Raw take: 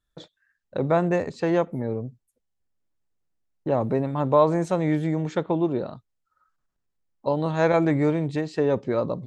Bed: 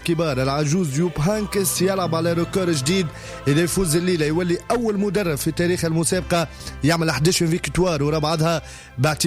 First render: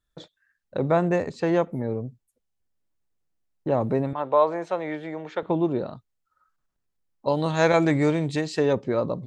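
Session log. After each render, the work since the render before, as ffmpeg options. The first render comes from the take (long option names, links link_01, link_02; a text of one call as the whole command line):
ffmpeg -i in.wav -filter_complex "[0:a]asettb=1/sr,asplit=3[link_01][link_02][link_03];[link_01]atrim=end=4.134[link_04];[link_02]atrim=start=4.13:end=5.43,asetpts=PTS-STARTPTS,afade=type=in:duration=0.004:curve=qsin,afade=type=out:start_time=1.296:duration=0.004:curve=qsin,acrossover=split=400 4500:gain=0.126 1 0.112[link_05][link_06][link_07];[link_05][link_06][link_07]amix=inputs=3:normalize=0[link_08];[link_03]atrim=start=5.426[link_09];[link_04][link_08]acrossfade=duration=0.004:curve1=hsin:curve2=qsin[link_10];[link_10][link_09]acrossfade=duration=0.004:curve1=qsin:curve2=hsin,asettb=1/sr,asplit=3[link_11][link_12][link_13];[link_11]atrim=end=7.284[link_14];[link_12]atrim=start=7.28:end=8.73,asetpts=PTS-STARTPTS,afade=type=in:duration=0.004:curve=qsin,afade=type=out:start_time=1.446:duration=0.004:curve=qsin,highshelf=frequency=2600:gain=11[link_15];[link_13]atrim=start=8.726[link_16];[link_14][link_15]acrossfade=duration=0.004:curve1=hsin:curve2=qsin[link_17];[link_17][link_16]acrossfade=duration=0.004:curve1=qsin:curve2=hsin" out.wav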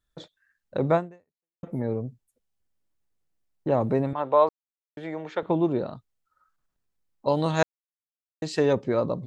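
ffmpeg -i in.wav -filter_complex "[0:a]asplit=6[link_01][link_02][link_03][link_04][link_05][link_06];[link_01]atrim=end=1.63,asetpts=PTS-STARTPTS,afade=type=out:start_time=0.95:duration=0.68:curve=exp[link_07];[link_02]atrim=start=1.63:end=4.49,asetpts=PTS-STARTPTS,afade=type=in:duration=0.004:curve=hsin,afade=type=out:start_time=2.856:duration=0.004:curve=hsin[link_08];[link_03]atrim=start=4.49:end=4.97,asetpts=PTS-STARTPTS,volume=0[link_09];[link_04]atrim=start=4.97:end=7.63,asetpts=PTS-STARTPTS,afade=type=in:duration=0.004:curve=hsin,afade=type=out:start_time=2.656:duration=0.004:curve=hsin[link_10];[link_05]atrim=start=7.63:end=8.42,asetpts=PTS-STARTPTS,volume=0[link_11];[link_06]atrim=start=8.42,asetpts=PTS-STARTPTS,afade=type=in:duration=0.004:curve=hsin[link_12];[link_07][link_08][link_09][link_10][link_11][link_12]concat=n=6:v=0:a=1" out.wav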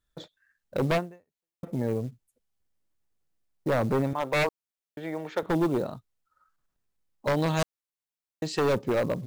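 ffmpeg -i in.wav -af "aeval=exprs='0.119*(abs(mod(val(0)/0.119+3,4)-2)-1)':channel_layout=same,acrusher=bits=7:mode=log:mix=0:aa=0.000001" out.wav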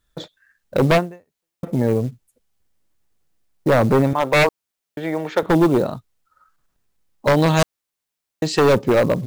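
ffmpeg -i in.wav -af "volume=10dB" out.wav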